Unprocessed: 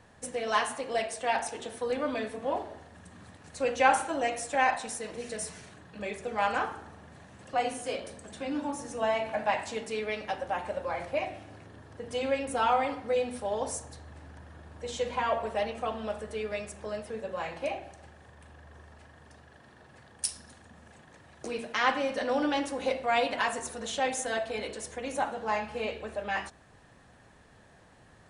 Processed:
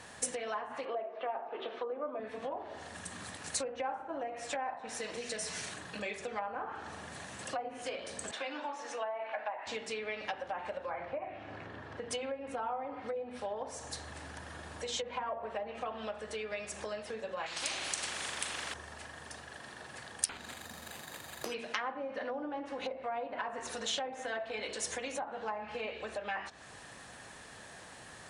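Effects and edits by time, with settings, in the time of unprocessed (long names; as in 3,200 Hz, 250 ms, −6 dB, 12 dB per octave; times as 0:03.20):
0:00.85–0:02.20: loudspeaker in its box 250–3,400 Hz, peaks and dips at 380 Hz +9 dB, 630 Hz +6 dB, 1,200 Hz +8 dB, 1,800 Hz −4 dB
0:08.31–0:09.67: band-pass filter 530–3,200 Hz
0:10.89–0:12.09: low-pass filter 1,800 Hz → 2,900 Hz
0:17.46–0:18.74: every bin compressed towards the loudest bin 4 to 1
0:20.29–0:21.54: bad sample-rate conversion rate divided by 8×, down none, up hold
whole clip: treble cut that deepens with the level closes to 910 Hz, closed at −25 dBFS; downward compressor 4 to 1, threshold −44 dBFS; spectral tilt +2.5 dB per octave; level +7.5 dB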